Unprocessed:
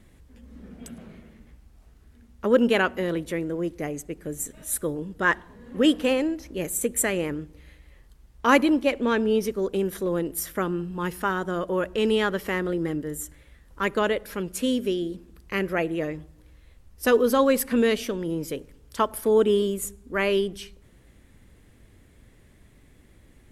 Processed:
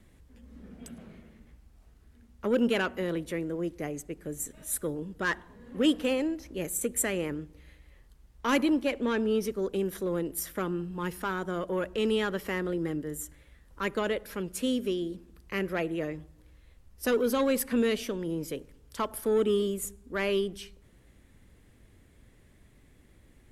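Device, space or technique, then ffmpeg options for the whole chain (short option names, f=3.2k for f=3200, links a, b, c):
one-band saturation: -filter_complex "[0:a]acrossover=split=350|2400[a][b][c];[b]asoftclip=type=tanh:threshold=-21dB[d];[a][d][c]amix=inputs=3:normalize=0,volume=-4dB"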